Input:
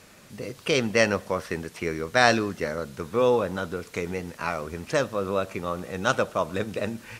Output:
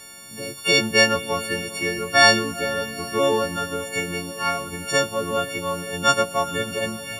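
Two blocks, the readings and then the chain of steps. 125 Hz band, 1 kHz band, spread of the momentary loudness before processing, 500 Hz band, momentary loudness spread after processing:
+0.5 dB, +5.0 dB, 11 LU, +1.5 dB, 12 LU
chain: partials quantised in pitch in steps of 4 st; echo that smears into a reverb 478 ms, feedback 63%, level -14.5 dB; trim +1 dB

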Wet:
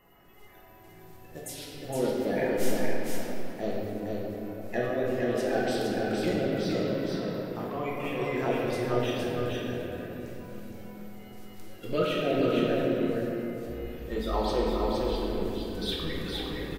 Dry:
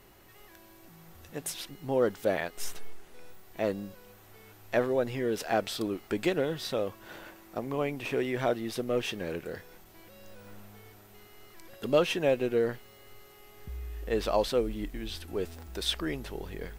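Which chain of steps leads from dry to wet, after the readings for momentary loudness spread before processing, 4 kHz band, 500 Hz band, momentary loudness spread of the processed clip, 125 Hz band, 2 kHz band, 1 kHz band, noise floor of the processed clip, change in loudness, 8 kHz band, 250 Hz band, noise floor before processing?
18 LU, 0.0 dB, +1.0 dB, 14 LU, +5.0 dB, +1.0 dB, +2.5 dB, -51 dBFS, +1.0 dB, -1.5 dB, +4.5 dB, -55 dBFS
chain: coarse spectral quantiser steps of 30 dB; on a send: delay 464 ms -3.5 dB; on the sum: simulated room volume 190 m³, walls hard, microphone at 0.82 m; trim -5.5 dB

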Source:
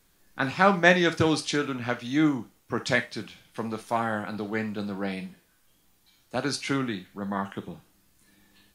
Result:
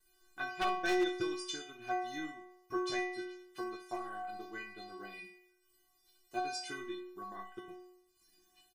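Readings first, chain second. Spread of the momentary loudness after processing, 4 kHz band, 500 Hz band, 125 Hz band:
16 LU, -10.0 dB, -11.0 dB, -27.0 dB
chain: single-diode clipper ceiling -4 dBFS; transient shaper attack +6 dB, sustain -7 dB; in parallel at +2 dB: compression, threshold -34 dBFS, peak gain reduction 21.5 dB; on the sum: inharmonic resonator 360 Hz, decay 0.81 s, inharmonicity 0.008; wavefolder -31.5 dBFS; de-hum 257.4 Hz, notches 27; on a send: multi-tap echo 41/66 ms -18/-16.5 dB; on the sum: trim +6.5 dB

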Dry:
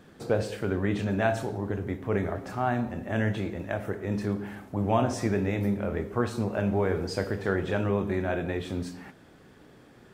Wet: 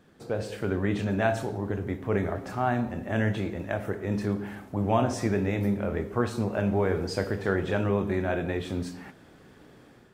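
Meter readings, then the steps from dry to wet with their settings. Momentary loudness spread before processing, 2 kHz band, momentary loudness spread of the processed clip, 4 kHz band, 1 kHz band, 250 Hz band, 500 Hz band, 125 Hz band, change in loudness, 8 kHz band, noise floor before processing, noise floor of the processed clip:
7 LU, +0.5 dB, 7 LU, +0.5 dB, +0.5 dB, +0.5 dB, +0.5 dB, +0.5 dB, +0.5 dB, +0.5 dB, -54 dBFS, -54 dBFS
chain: level rider gain up to 7 dB; trim -6 dB

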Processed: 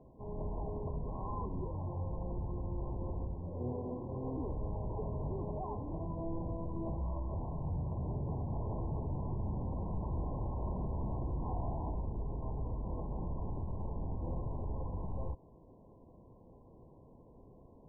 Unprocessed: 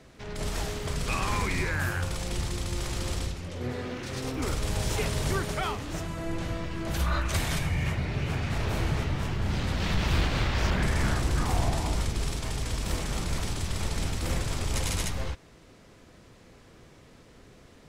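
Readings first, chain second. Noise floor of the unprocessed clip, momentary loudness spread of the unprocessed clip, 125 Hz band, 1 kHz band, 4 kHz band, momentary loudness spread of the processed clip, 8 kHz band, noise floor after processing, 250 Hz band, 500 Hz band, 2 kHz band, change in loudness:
-54 dBFS, 7 LU, -8.0 dB, -10.0 dB, under -40 dB, 20 LU, under -40 dB, -59 dBFS, -7.5 dB, -7.0 dB, under -40 dB, -9.5 dB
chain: peak limiter -24.5 dBFS, peak gain reduction 7.5 dB; brick-wall FIR low-pass 1.1 kHz; trim -4 dB

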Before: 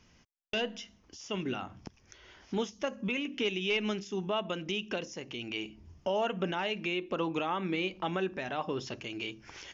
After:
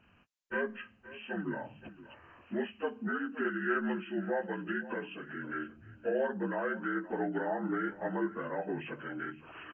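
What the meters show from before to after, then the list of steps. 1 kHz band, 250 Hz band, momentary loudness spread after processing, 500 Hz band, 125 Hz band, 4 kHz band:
-2.0 dB, +0.5 dB, 15 LU, -1.0 dB, -3.5 dB, -17.0 dB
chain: frequency axis rescaled in octaves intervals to 76%; delay 521 ms -17 dB

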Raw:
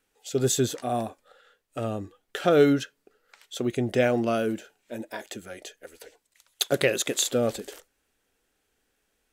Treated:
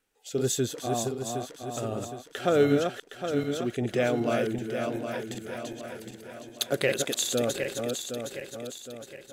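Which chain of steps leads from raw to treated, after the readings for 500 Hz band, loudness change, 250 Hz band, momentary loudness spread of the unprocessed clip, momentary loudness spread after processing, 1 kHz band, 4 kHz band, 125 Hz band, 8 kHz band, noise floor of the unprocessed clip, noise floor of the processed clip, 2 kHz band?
-1.5 dB, -3.5 dB, -2.0 dB, 18 LU, 13 LU, -1.5 dB, -1.5 dB, -1.0 dB, -1.5 dB, -75 dBFS, -52 dBFS, -1.5 dB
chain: backward echo that repeats 382 ms, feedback 67%, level -4.5 dB; trim -3.5 dB

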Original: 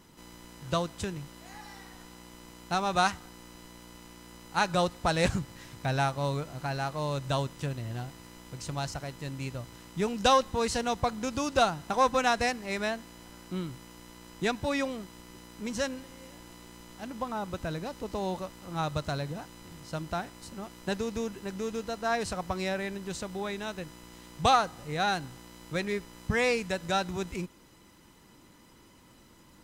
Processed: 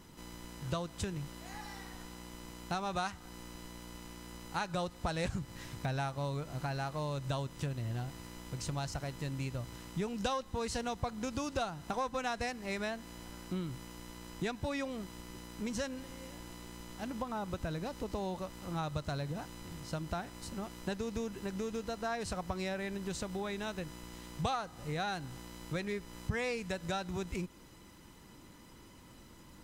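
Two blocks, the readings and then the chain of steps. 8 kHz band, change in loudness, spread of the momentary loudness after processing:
-6.0 dB, -8.0 dB, 13 LU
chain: compression 3:1, threshold -36 dBFS, peak gain reduction 13.5 dB; bass shelf 130 Hz +5 dB

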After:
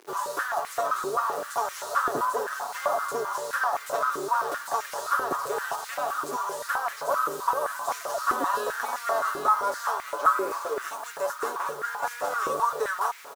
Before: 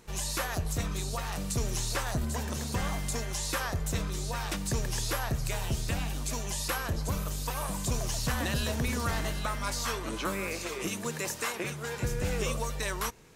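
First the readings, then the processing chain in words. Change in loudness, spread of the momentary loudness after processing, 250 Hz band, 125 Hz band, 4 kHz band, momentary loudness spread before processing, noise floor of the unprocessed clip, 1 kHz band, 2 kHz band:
+4.5 dB, 6 LU, -7.0 dB, under -20 dB, -5.0 dB, 3 LU, -39 dBFS, +13.0 dB, +5.0 dB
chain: formants flattened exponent 0.6; resonant high shelf 1.7 kHz -10 dB, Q 3; comb 7.1 ms, depth 66%; reverse; upward compressor, threshold -32 dBFS; reverse; bit crusher 8-bit; step-sequenced high-pass 7.7 Hz 370–2100 Hz

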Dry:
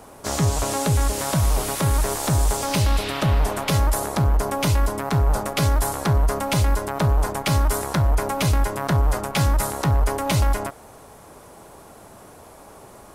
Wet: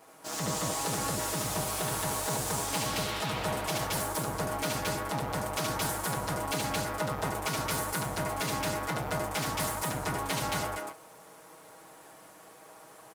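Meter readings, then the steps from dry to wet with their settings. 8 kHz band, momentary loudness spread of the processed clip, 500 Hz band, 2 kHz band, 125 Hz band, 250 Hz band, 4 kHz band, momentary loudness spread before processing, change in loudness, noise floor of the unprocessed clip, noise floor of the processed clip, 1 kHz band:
-5.0 dB, 13 LU, -8.0 dB, -4.5 dB, -16.0 dB, -10.0 dB, -5.0 dB, 2 LU, -9.5 dB, -46 dBFS, -53 dBFS, -6.5 dB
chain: comb filter that takes the minimum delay 6.3 ms; high-pass 340 Hz 6 dB/octave; loudspeakers at several distances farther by 25 m -2 dB, 76 m 0 dB; trim -8.5 dB

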